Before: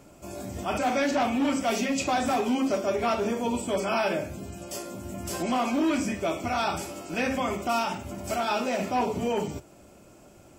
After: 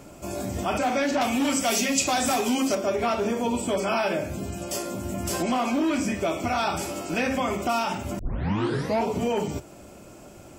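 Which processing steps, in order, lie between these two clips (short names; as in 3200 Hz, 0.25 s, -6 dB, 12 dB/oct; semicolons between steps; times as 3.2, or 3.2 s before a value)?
1.21–2.75 bell 12000 Hz +13 dB 2.4 oct; compressor 2:1, threshold -32 dBFS, peak gain reduction 7.5 dB; 8.19 tape start 0.87 s; gain +6.5 dB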